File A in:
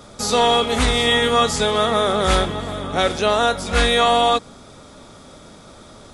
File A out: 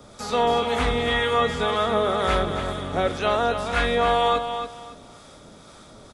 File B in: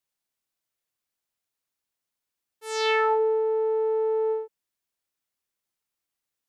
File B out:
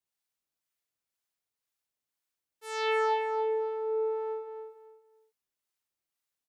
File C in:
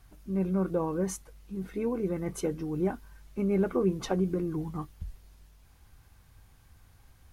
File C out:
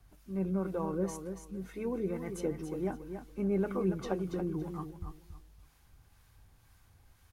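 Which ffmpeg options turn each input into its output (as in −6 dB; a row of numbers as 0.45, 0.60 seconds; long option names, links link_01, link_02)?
-filter_complex "[0:a]acrossover=split=3000[link_01][link_02];[link_02]acompressor=threshold=-38dB:ratio=4:attack=1:release=60[link_03];[link_01][link_03]amix=inputs=2:normalize=0,lowshelf=frequency=150:gain=-8,acrossover=split=140|1700[link_04][link_05][link_06];[link_04]acontrast=36[link_07];[link_07][link_05][link_06]amix=inputs=3:normalize=0,acrossover=split=740[link_08][link_09];[link_08]aeval=exprs='val(0)*(1-0.5/2+0.5/2*cos(2*PI*2*n/s))':channel_layout=same[link_10];[link_09]aeval=exprs='val(0)*(1-0.5/2-0.5/2*cos(2*PI*2*n/s))':channel_layout=same[link_11];[link_10][link_11]amix=inputs=2:normalize=0,aecho=1:1:281|562|843:0.398|0.0955|0.0229,volume=-1.5dB"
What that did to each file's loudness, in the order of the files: −5.0, −6.0, −4.5 LU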